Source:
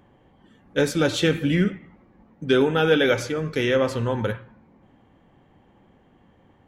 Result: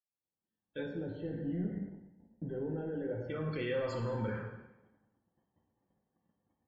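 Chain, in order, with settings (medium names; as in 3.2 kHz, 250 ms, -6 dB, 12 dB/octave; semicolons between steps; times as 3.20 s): fade-in on the opening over 1.79 s; high-pass 54 Hz 24 dB/octave; gate -53 dBFS, range -20 dB; waveshaping leveller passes 2; peak limiter -26 dBFS, peak gain reduction 19 dB; 0.83–3.30 s: boxcar filter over 37 samples; loudest bins only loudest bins 64; plate-style reverb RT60 0.98 s, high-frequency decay 0.95×, DRR 1.5 dB; trim -6 dB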